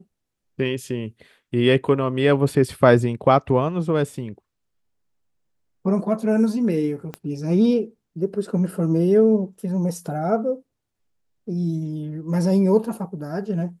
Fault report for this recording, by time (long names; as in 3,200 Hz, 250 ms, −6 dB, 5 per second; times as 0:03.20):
0:07.14: click −17 dBFS